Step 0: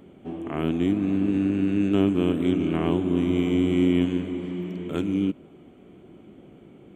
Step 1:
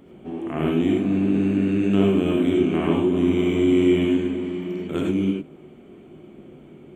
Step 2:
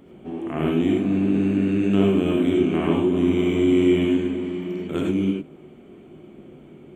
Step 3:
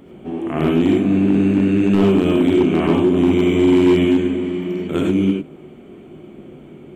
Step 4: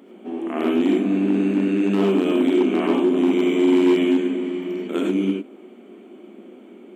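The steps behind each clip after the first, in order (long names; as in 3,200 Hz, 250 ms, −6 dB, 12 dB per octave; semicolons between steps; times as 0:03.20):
reverb whose tail is shaped and stops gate 120 ms rising, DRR −1 dB
no processing that can be heard
hard clipping −13.5 dBFS, distortion −19 dB; level +5.5 dB
linear-phase brick-wall high-pass 190 Hz; level −3 dB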